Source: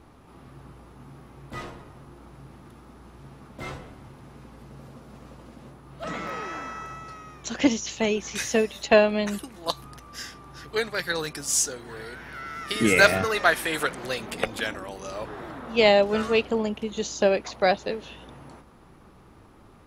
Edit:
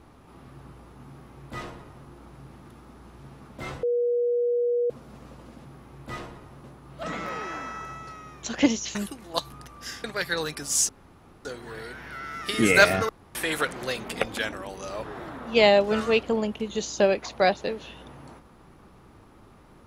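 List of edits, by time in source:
0:01.09–0:02.08: duplicate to 0:05.65
0:03.83–0:04.90: beep over 481 Hz −21 dBFS
0:07.96–0:09.27: remove
0:10.36–0:10.82: remove
0:11.67: splice in room tone 0.56 s
0:13.31–0:13.57: fill with room tone

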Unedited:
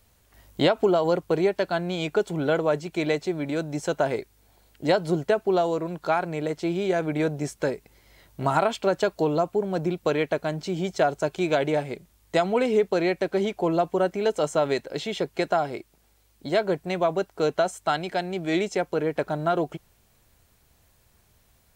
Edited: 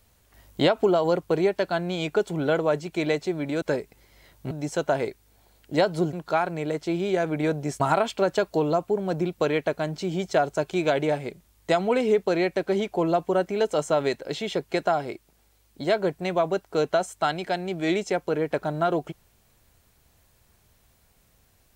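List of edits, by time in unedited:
0:05.24–0:05.89: remove
0:07.56–0:08.45: move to 0:03.62

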